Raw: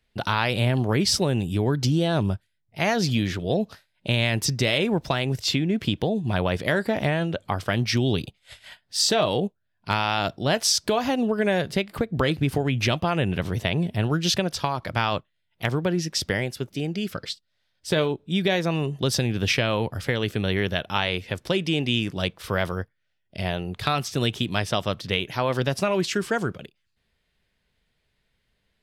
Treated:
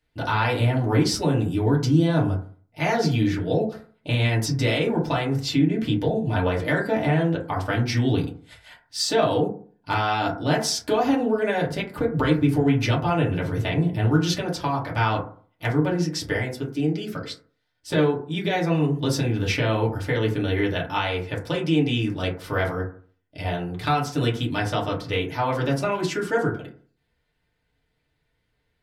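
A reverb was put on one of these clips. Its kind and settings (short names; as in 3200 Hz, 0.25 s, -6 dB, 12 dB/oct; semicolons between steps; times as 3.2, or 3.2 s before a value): FDN reverb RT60 0.45 s, low-frequency decay 1.05×, high-frequency decay 0.3×, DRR -5 dB; gain -6 dB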